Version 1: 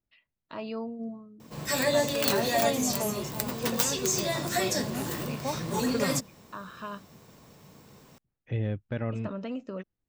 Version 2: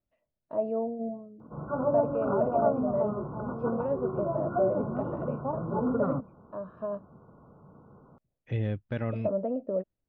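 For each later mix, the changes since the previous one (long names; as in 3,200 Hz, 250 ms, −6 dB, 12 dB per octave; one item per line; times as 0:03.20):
first voice: add low-pass with resonance 620 Hz, resonance Q 4.3
background: add linear-phase brick-wall low-pass 1,500 Hz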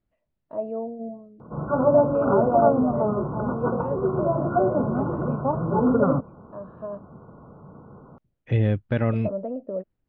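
second voice +9.0 dB
background +8.5 dB
master: add high-frequency loss of the air 91 metres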